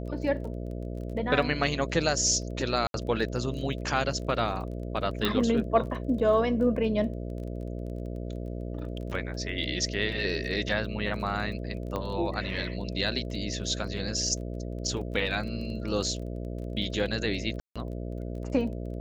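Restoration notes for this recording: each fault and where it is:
buzz 60 Hz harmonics 11 -35 dBFS
crackle 20 per s -38 dBFS
2.87–2.94 s: dropout 72 ms
5.25 s: pop -13 dBFS
11.96 s: pop -19 dBFS
17.60–17.76 s: dropout 156 ms

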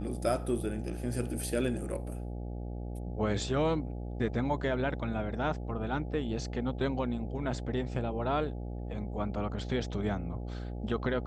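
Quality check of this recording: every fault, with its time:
buzz 60 Hz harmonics 14 -38 dBFS

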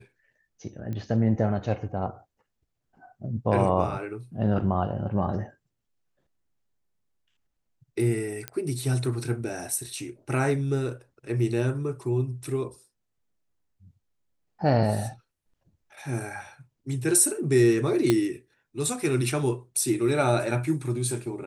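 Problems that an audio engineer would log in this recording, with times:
0.93 s: pop -23 dBFS
8.48 s: pop -15 dBFS
18.10 s: pop -8 dBFS

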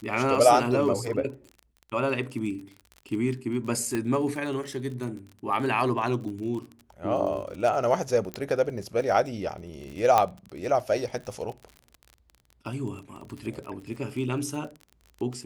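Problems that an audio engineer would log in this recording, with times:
crackle 36 per s -35 dBFS
3.95 s: pop -16 dBFS
6.24 s: dropout 2.1 ms
8.34 s: pop -16 dBFS
10.18 s: pop -8 dBFS

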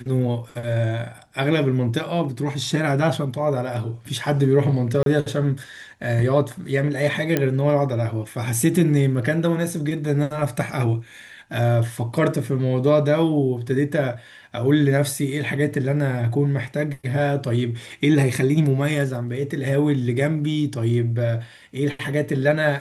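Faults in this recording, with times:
5.03–5.06 s: dropout 32 ms
7.37 s: pop -6 dBFS

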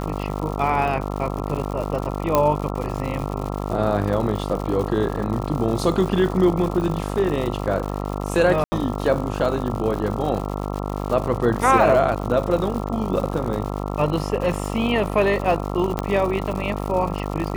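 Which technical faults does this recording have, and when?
buzz 50 Hz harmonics 27 -27 dBFS
crackle 160 per s -28 dBFS
2.35 s: pop -4 dBFS
8.64–8.72 s: dropout 80 ms
15.99 s: pop -9 dBFS

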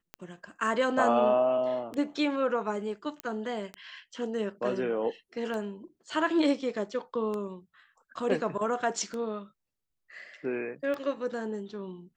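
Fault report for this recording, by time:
tick 33 1/3 rpm -23 dBFS
3.20 s: pop -19 dBFS

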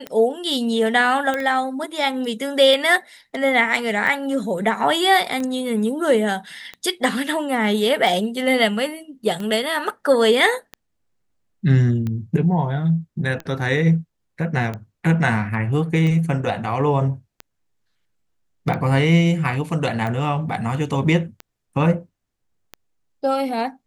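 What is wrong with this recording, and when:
tick 45 rpm -16 dBFS
1.34 s: pop -11 dBFS

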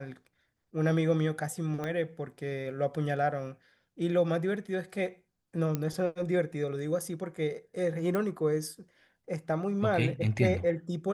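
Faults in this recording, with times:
1.84 s: pop -22 dBFS
5.75 s: pop -17 dBFS
8.15 s: pop -19 dBFS

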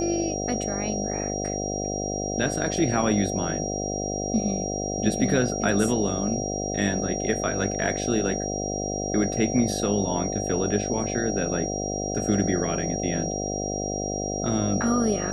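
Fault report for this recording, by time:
buzz 50 Hz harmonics 15 -30 dBFS
whine 5.7 kHz -32 dBFS

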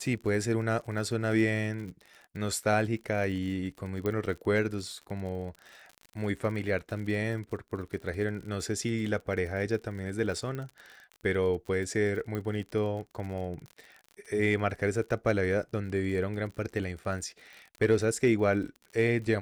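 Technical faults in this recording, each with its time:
crackle 48 per s -38 dBFS
4.06 s: pop -19 dBFS
10.55 s: pop -25 dBFS
12.35 s: pop -22 dBFS

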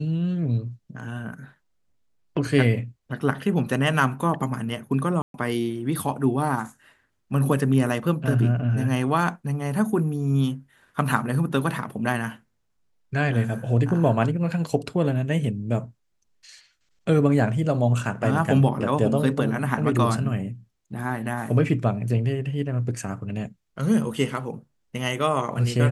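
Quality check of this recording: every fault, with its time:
5.22–5.34 s: dropout 122 ms

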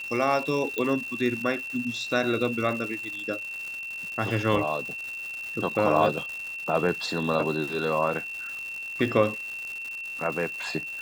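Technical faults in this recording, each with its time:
crackle 300 per s -33 dBFS
whine 2.7 kHz -33 dBFS
0.78 s: pop -15 dBFS

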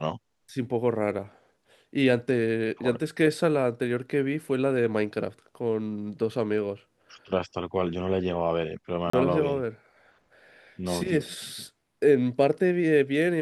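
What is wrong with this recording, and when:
9.10–9.13 s: dropout 34 ms

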